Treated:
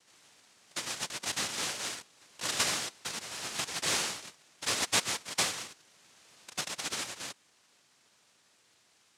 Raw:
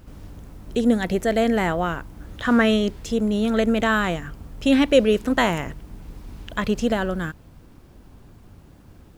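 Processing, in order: low-pass 5.4 kHz 12 dB/octave; differentiator; noise-vocoded speech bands 1; trim +5.5 dB

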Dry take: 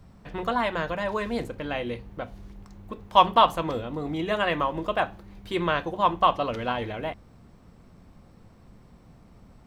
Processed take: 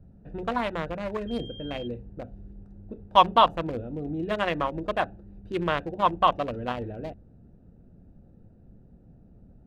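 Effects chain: local Wiener filter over 41 samples; 1.27–1.86 s: whistle 3.2 kHz -43 dBFS

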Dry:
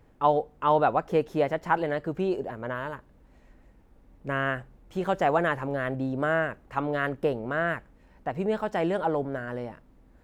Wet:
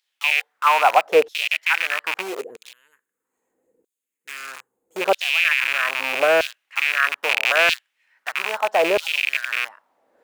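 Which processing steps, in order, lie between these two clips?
rattle on loud lows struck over -39 dBFS, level -16 dBFS; 2.21–5.01 s: time-frequency box 520–6300 Hz -18 dB; 7.29–7.75 s: tilt shelf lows -9 dB, about 910 Hz; in parallel at -4 dB: bit crusher 5-bit; on the sum: LFO high-pass saw down 0.78 Hz 440–4000 Hz

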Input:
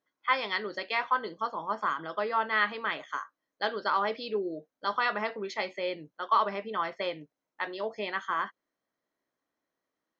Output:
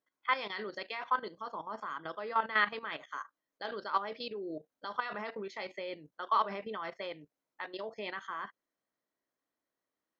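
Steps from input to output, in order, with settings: level held to a coarse grid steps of 13 dB

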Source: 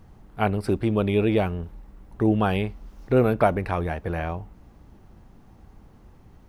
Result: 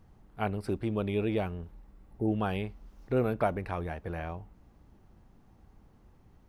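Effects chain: spectral replace 1.97–2.26 s, 920–8700 Hz before; trim -8.5 dB

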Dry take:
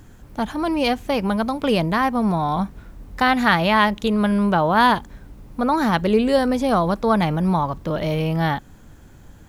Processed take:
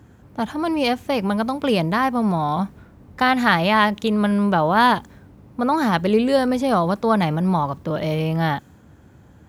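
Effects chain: high-pass 70 Hz 24 dB/octave; tape noise reduction on one side only decoder only

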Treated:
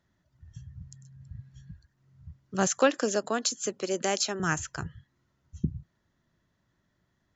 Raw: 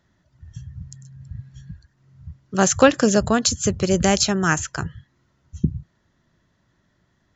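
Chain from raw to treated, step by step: 2.67–4.40 s: high-pass 260 Hz 24 dB/octave; trim -8.5 dB

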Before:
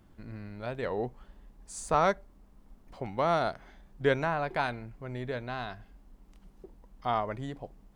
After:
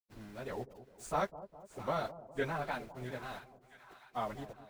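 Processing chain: small samples zeroed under -43 dBFS; plain phase-vocoder stretch 0.59×; two-band feedback delay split 910 Hz, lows 204 ms, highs 663 ms, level -14 dB; trim -3.5 dB

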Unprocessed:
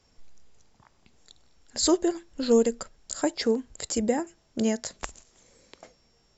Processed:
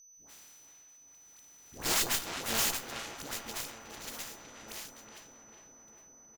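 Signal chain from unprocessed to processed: spectral contrast reduction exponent 0.12; Doppler pass-by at 2.00 s, 8 m/s, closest 3.3 m; in parallel at +0.5 dB: compression, threshold -37 dBFS, peak gain reduction 18 dB; on the sum: feedback comb 280 Hz, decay 0.34 s, harmonics odd, mix 70%; phase dispersion highs, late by 113 ms, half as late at 720 Hz; speakerphone echo 370 ms, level -8 dB; whistle 6 kHz -55 dBFS; on a send: filtered feedback delay 406 ms, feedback 77%, low-pass 2.3 kHz, level -8.5 dB; on the sum: Chebyshev shaper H 8 -11 dB, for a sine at -16.5 dBFS

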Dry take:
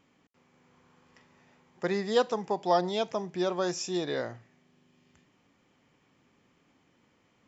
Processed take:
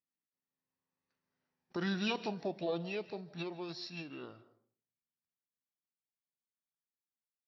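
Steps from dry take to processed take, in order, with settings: Doppler pass-by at 1.66 s, 19 m/s, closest 8.3 m; gate -57 dBFS, range -25 dB; treble shelf 3.3 kHz +6.5 dB; peak limiter -25 dBFS, peak gain reduction 11 dB; formant shift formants -4 st; reverberation RT60 0.50 s, pre-delay 115 ms, DRR 16.5 dB

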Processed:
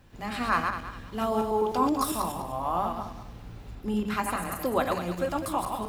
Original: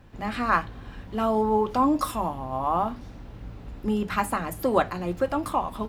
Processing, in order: backward echo that repeats 101 ms, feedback 50%, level -4 dB; treble shelf 3.3 kHz +9.5 dB, from 3.75 s +4.5 dB, from 4.85 s +9.5 dB; trim -5 dB

